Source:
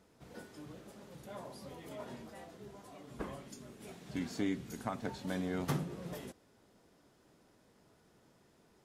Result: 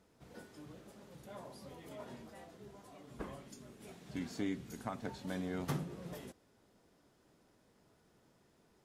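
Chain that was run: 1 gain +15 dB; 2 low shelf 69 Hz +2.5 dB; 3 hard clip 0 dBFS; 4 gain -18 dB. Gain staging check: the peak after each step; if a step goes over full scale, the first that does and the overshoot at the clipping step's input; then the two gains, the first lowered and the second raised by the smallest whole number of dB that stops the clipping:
-5.5, -5.5, -5.5, -23.5 dBFS; no overload

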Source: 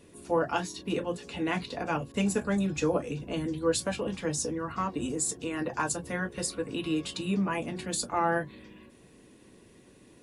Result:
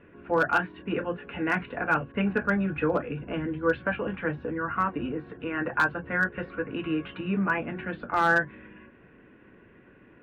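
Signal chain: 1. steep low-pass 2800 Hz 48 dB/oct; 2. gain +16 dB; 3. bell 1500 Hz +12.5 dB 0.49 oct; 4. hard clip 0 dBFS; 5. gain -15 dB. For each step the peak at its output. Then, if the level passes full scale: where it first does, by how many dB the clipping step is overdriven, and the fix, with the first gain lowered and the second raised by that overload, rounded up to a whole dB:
-15.5, +0.5, +6.0, 0.0, -15.0 dBFS; step 2, 6.0 dB; step 2 +10 dB, step 5 -9 dB

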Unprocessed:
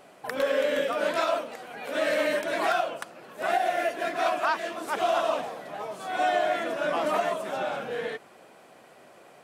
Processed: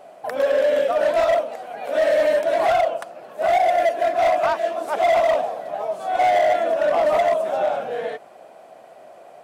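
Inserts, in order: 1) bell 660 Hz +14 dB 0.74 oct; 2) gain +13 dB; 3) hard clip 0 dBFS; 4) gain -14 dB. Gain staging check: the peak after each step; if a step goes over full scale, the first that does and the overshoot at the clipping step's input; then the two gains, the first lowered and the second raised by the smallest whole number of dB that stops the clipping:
-3.0, +10.0, 0.0, -14.0 dBFS; step 2, 10.0 dB; step 2 +3 dB, step 4 -4 dB

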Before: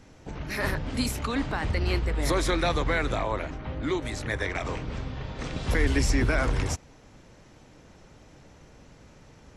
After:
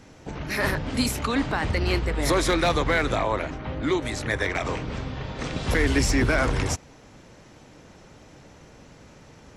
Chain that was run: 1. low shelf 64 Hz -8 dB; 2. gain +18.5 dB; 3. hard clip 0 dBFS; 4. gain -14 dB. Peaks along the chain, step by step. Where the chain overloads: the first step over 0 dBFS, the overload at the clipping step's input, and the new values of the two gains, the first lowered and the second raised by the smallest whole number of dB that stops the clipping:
-13.0, +5.5, 0.0, -14.0 dBFS; step 2, 5.5 dB; step 2 +12.5 dB, step 4 -8 dB

